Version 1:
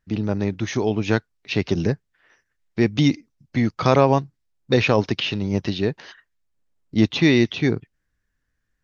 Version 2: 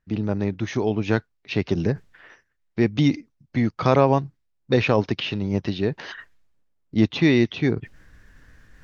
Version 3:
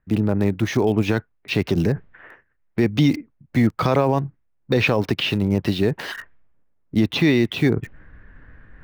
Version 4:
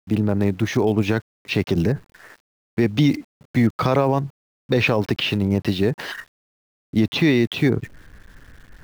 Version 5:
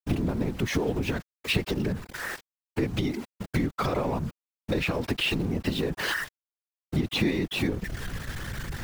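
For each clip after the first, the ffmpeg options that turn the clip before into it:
ffmpeg -i in.wav -af "aemphasis=mode=reproduction:type=cd,areverse,acompressor=mode=upward:threshold=-26dB:ratio=2.5,areverse,volume=-1.5dB" out.wav
ffmpeg -i in.wav -filter_complex "[0:a]acrossover=split=530|2500[link_01][link_02][link_03];[link_03]acrusher=bits=7:mix=0:aa=0.000001[link_04];[link_01][link_02][link_04]amix=inputs=3:normalize=0,alimiter=level_in=12.5dB:limit=-1dB:release=50:level=0:latency=1,volume=-7dB" out.wav
ffmpeg -i in.wav -af "aeval=exprs='val(0)*gte(abs(val(0)),0.00447)':channel_layout=same" out.wav
ffmpeg -i in.wav -af "aeval=exprs='val(0)+0.5*0.0473*sgn(val(0))':channel_layout=same,acompressor=threshold=-23dB:ratio=16,afftfilt=real='hypot(re,im)*cos(2*PI*random(0))':imag='hypot(re,im)*sin(2*PI*random(1))':win_size=512:overlap=0.75,volume=6dB" out.wav

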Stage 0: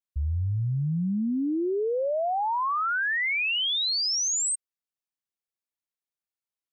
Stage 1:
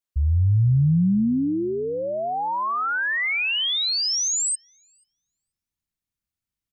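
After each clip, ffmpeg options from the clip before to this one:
ffmpeg -i in.wav -filter_complex "[0:a]asubboost=boost=9:cutoff=180,asplit=2[link_01][link_02];[link_02]adelay=485,lowpass=frequency=1100:poles=1,volume=-20dB,asplit=2[link_03][link_04];[link_04]adelay=485,lowpass=frequency=1100:poles=1,volume=0.42,asplit=2[link_05][link_06];[link_06]adelay=485,lowpass=frequency=1100:poles=1,volume=0.42[link_07];[link_01][link_03][link_05][link_07]amix=inputs=4:normalize=0,volume=3dB" out.wav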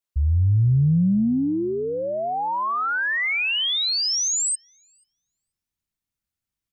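ffmpeg -i in.wav -af "acontrast=40,volume=-5dB" out.wav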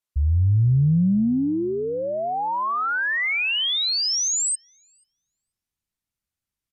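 ffmpeg -i in.wav -af "aresample=32000,aresample=44100" out.wav

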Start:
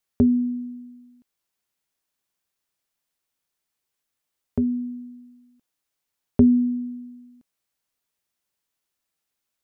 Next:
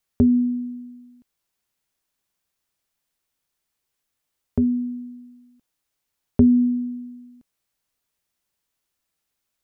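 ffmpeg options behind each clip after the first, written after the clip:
ffmpeg -i in.wav -filter_complex "[0:a]lowshelf=frequency=110:gain=6,asplit=2[link_01][link_02];[link_02]alimiter=limit=-16.5dB:level=0:latency=1,volume=-2dB[link_03];[link_01][link_03]amix=inputs=2:normalize=0,volume=-3dB" out.wav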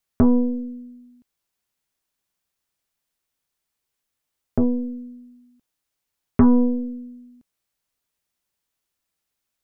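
ffmpeg -i in.wav -af "aeval=exprs='0.473*(cos(1*acos(clip(val(0)/0.473,-1,1)))-cos(1*PI/2))+0.0668*(cos(6*acos(clip(val(0)/0.473,-1,1)))-cos(6*PI/2))+0.0106*(cos(7*acos(clip(val(0)/0.473,-1,1)))-cos(7*PI/2))':channel_layout=same" out.wav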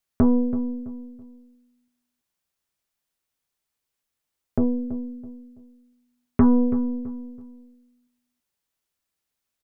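ffmpeg -i in.wav -filter_complex "[0:a]asplit=2[link_01][link_02];[link_02]adelay=330,lowpass=frequency=1500:poles=1,volume=-13dB,asplit=2[link_03][link_04];[link_04]adelay=330,lowpass=frequency=1500:poles=1,volume=0.34,asplit=2[link_05][link_06];[link_06]adelay=330,lowpass=frequency=1500:poles=1,volume=0.34[link_07];[link_01][link_03][link_05][link_07]amix=inputs=4:normalize=0,volume=-2dB" out.wav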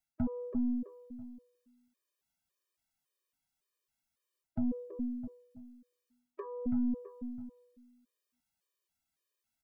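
ffmpeg -i in.wav -af "areverse,acompressor=threshold=-25dB:ratio=10,areverse,afftfilt=real='re*gt(sin(2*PI*1.8*pts/sr)*(1-2*mod(floor(b*sr/1024/320),2)),0)':imag='im*gt(sin(2*PI*1.8*pts/sr)*(1-2*mod(floor(b*sr/1024/320),2)),0)':win_size=1024:overlap=0.75,volume=-1.5dB" out.wav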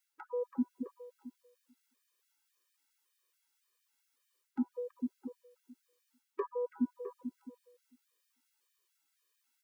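ffmpeg -i in.wav -af "asuperstop=centerf=670:order=8:qfactor=2.6,afftfilt=real='re*gte(b*sr/1024,230*pow(1500/230,0.5+0.5*sin(2*PI*4.5*pts/sr)))':imag='im*gte(b*sr/1024,230*pow(1500/230,0.5+0.5*sin(2*PI*4.5*pts/sr)))':win_size=1024:overlap=0.75,volume=7.5dB" out.wav

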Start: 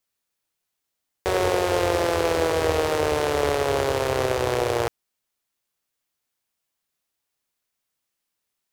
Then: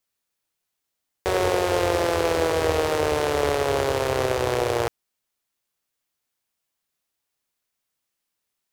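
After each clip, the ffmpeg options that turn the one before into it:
ffmpeg -i in.wav -af anull out.wav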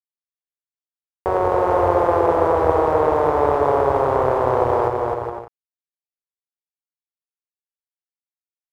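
ffmpeg -i in.wav -filter_complex "[0:a]lowpass=frequency=1000:width_type=q:width=2.3,aeval=exprs='sgn(val(0))*max(abs(val(0))-0.00596,0)':channel_layout=same,asplit=2[link_01][link_02];[link_02]aecho=0:1:260|416|509.6|565.8|599.5:0.631|0.398|0.251|0.158|0.1[link_03];[link_01][link_03]amix=inputs=2:normalize=0,volume=1dB" out.wav

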